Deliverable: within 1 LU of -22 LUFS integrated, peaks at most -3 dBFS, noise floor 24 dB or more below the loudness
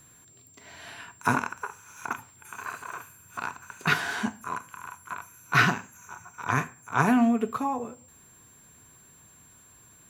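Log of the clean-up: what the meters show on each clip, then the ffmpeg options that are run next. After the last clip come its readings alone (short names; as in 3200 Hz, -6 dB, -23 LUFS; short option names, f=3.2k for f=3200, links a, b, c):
steady tone 7400 Hz; tone level -54 dBFS; loudness -28.5 LUFS; peak -6.5 dBFS; loudness target -22.0 LUFS
-> -af "bandreject=f=7.4k:w=30"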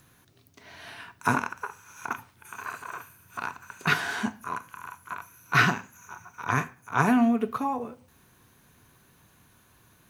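steady tone none; loudness -28.5 LUFS; peak -6.5 dBFS; loudness target -22.0 LUFS
-> -af "volume=6.5dB,alimiter=limit=-3dB:level=0:latency=1"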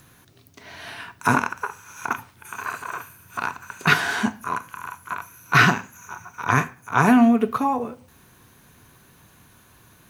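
loudness -22.5 LUFS; peak -3.0 dBFS; noise floor -54 dBFS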